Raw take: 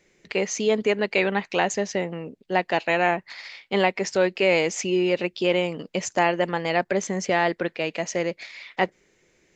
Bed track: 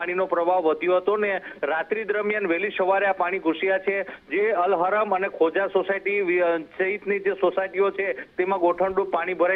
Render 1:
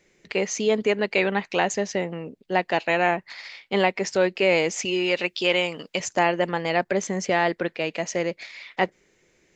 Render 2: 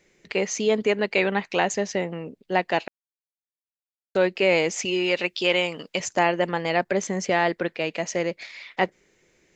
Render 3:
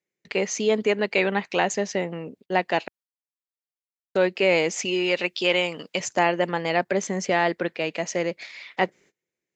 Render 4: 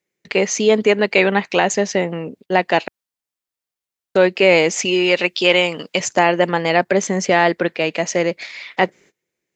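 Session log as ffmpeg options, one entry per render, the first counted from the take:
ffmpeg -i in.wav -filter_complex "[0:a]asettb=1/sr,asplit=3[link_01][link_02][link_03];[link_01]atrim=end=4.854[link_04];[link_02]atrim=start=4.85:end=6,asetpts=PTS-STARTPTS,afade=type=in:duration=0.004:curve=qsin,afade=type=out:start_time=1.146:duration=0.004:curve=qsin,tiltshelf=frequency=680:gain=-6[link_05];[link_03]atrim=start=5.996[link_06];[link_04][link_05]acrossfade=duration=0.004:curve1=hsin:curve2=qsin[link_07];[link_07][link_06]acrossfade=duration=0.004:curve1=qsin:curve2=hsin" out.wav
ffmpeg -i in.wav -filter_complex "[0:a]asplit=3[link_01][link_02][link_03];[link_01]atrim=end=2.88,asetpts=PTS-STARTPTS,afade=type=out:start_time=2.876:duration=0.004:curve=hsin[link_04];[link_02]atrim=start=2.88:end=4.15,asetpts=PTS-STARTPTS,volume=0[link_05];[link_03]atrim=start=4.15,asetpts=PTS-STARTPTS,afade=type=in:duration=0.004:curve=hsin[link_06];[link_04][link_05][link_06]concat=n=3:v=0:a=1" out.wav
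ffmpeg -i in.wav -af "highpass=97,agate=range=-25dB:threshold=-51dB:ratio=16:detection=peak" out.wav
ffmpeg -i in.wav -af "volume=7.5dB,alimiter=limit=-1dB:level=0:latency=1" out.wav

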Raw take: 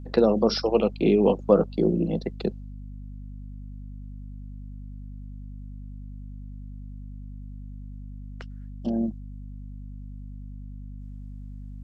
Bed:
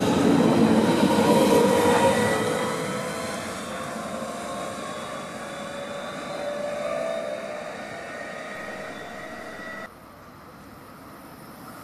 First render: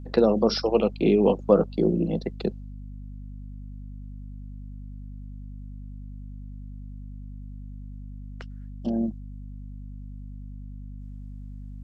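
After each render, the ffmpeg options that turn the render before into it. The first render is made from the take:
ffmpeg -i in.wav -af anull out.wav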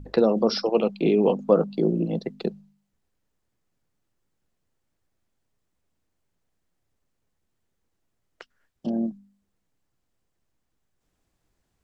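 ffmpeg -i in.wav -af "bandreject=frequency=50:width_type=h:width=4,bandreject=frequency=100:width_type=h:width=4,bandreject=frequency=150:width_type=h:width=4,bandreject=frequency=200:width_type=h:width=4,bandreject=frequency=250:width_type=h:width=4" out.wav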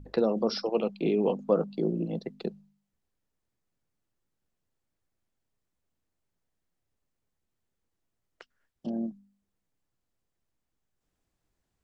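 ffmpeg -i in.wav -af "volume=-6dB" out.wav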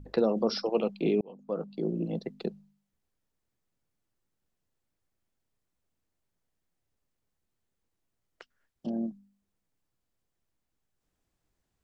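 ffmpeg -i in.wav -filter_complex "[0:a]asplit=2[link_01][link_02];[link_01]atrim=end=1.21,asetpts=PTS-STARTPTS,afade=type=out:start_time=1.206:duration=0.004:curve=hsin[link_03];[link_02]atrim=start=1.21,asetpts=PTS-STARTPTS,afade=type=in:duration=0.89[link_04];[link_03][link_04]concat=n=2:v=0:a=1" out.wav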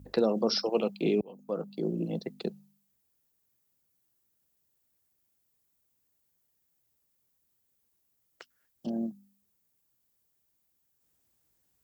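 ffmpeg -i in.wav -af "highpass=57,aemphasis=mode=production:type=50fm" out.wav

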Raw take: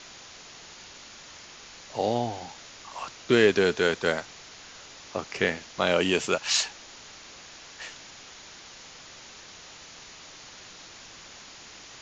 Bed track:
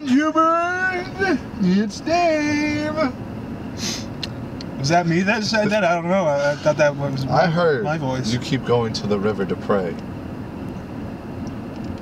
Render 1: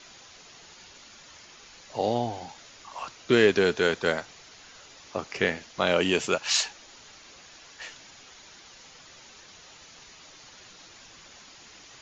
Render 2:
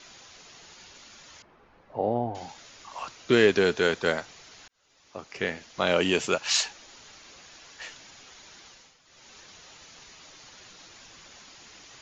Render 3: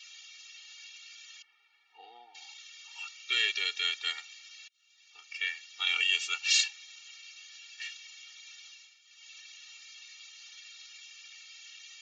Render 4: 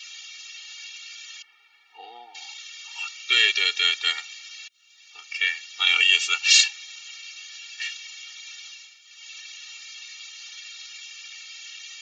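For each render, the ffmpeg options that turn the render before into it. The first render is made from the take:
ffmpeg -i in.wav -af "afftdn=noise_reduction=6:noise_floor=-47" out.wav
ffmpeg -i in.wav -filter_complex "[0:a]asettb=1/sr,asplit=3[link_01][link_02][link_03];[link_01]atrim=end=1.424[link_04];[link_02]atrim=start=1.42:end=2.35,asetpts=PTS-STARTPTS,afade=type=in:duration=0.004:curve=qsin,afade=type=out:start_time=0.926:duration=0.004:curve=qsin,lowpass=1100[link_05];[link_03]atrim=start=2.346[link_06];[link_04][link_05]acrossfade=duration=0.004:curve1=hsin:curve2=qsin[link_07];[link_07][link_06]acrossfade=duration=0.004:curve1=qsin:curve2=hsin,asplit=4[link_08][link_09][link_10][link_11];[link_08]atrim=end=4.68,asetpts=PTS-STARTPTS,afade=type=out:start_time=4.676:duration=0.004:curve=hsin[link_12];[link_09]atrim=start=4.68:end=8.97,asetpts=PTS-STARTPTS,afade=type=in:duration=1.25,afade=type=out:start_time=3.98:duration=0.31:silence=0.251189[link_13];[link_10]atrim=start=8.97:end=9.04,asetpts=PTS-STARTPTS,volume=-12dB[link_14];[link_11]atrim=start=9.04,asetpts=PTS-STARTPTS,afade=type=in:duration=0.31:silence=0.251189[link_15];[link_12][link_13][link_14][link_15]concat=n=4:v=0:a=1" out.wav
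ffmpeg -i in.wav -af "highpass=frequency=2600:width_type=q:width=2.6,afftfilt=real='re*eq(mod(floor(b*sr/1024/240),2),1)':imag='im*eq(mod(floor(b*sr/1024/240),2),1)':win_size=1024:overlap=0.75" out.wav
ffmpeg -i in.wav -af "volume=9.5dB" out.wav

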